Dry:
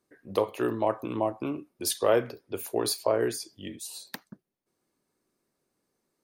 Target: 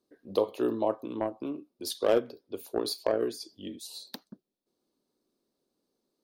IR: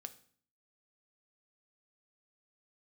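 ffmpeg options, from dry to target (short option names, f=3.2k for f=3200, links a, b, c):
-filter_complex "[0:a]equalizer=f=125:t=o:w=1:g=-5,equalizer=f=250:t=o:w=1:g=6,equalizer=f=500:t=o:w=1:g=4,equalizer=f=2k:t=o:w=1:g=-9,equalizer=f=4k:t=o:w=1:g=9,equalizer=f=8k:t=o:w=1:g=-4,asettb=1/sr,asplit=3[a][b][c];[a]atrim=end=0.954[d];[b]atrim=start=0.95:end=3.41,asetpts=PTS-STARTPTS,afade=t=in:d=0.004:c=qsin,afade=t=out:st=2.456:d=0.004:c=qsin,aeval=exprs='0.299*(cos(1*acos(clip(val(0)/0.299,-1,1)))-cos(1*PI/2))+0.0376*(cos(3*acos(clip(val(0)/0.299,-1,1)))-cos(3*PI/2))':c=same[e];[c]atrim=start=3.406[f];[d][e]acrossfade=d=0.004:c1=hsin:c2=qsin[g];[g][f]acrossfade=d=0.004:c1=qsin:c2=hsin,volume=-4.5dB"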